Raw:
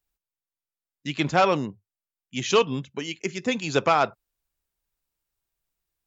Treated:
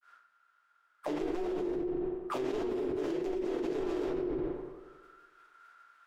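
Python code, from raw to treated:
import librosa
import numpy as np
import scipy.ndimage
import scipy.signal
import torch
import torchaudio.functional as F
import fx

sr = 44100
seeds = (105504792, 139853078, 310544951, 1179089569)

y = fx.spec_flatten(x, sr, power=0.1)
y = fx.transient(y, sr, attack_db=4, sustain_db=0)
y = fx.granulator(y, sr, seeds[0], grain_ms=100.0, per_s=20.0, spray_ms=13.0, spread_st=0)
y = fx.auto_wah(y, sr, base_hz=360.0, top_hz=1400.0, q=21.0, full_db=-36.0, direction='down')
y = fx.cheby_harmonics(y, sr, harmonics=(2,), levels_db=(-13,), full_scale_db=-31.0)
y = fx.echo_filtered(y, sr, ms=91, feedback_pct=65, hz=4600.0, wet_db=-23.5)
y = fx.room_shoebox(y, sr, seeds[1], volume_m3=68.0, walls='mixed', distance_m=1.3)
y = fx.env_flatten(y, sr, amount_pct=100)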